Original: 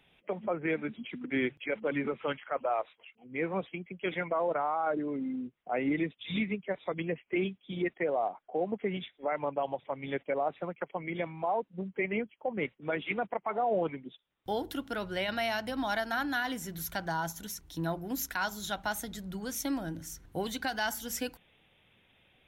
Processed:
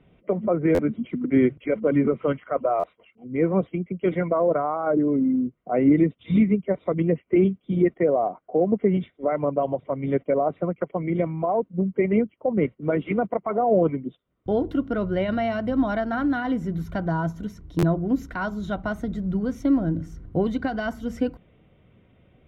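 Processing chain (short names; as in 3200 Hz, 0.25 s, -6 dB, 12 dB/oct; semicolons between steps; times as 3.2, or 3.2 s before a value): LPF 1300 Hz 6 dB/oct; tilt -3 dB/oct; notch comb 840 Hz; stuck buffer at 0.74/2.79/17.78, samples 512, times 3; gain +8 dB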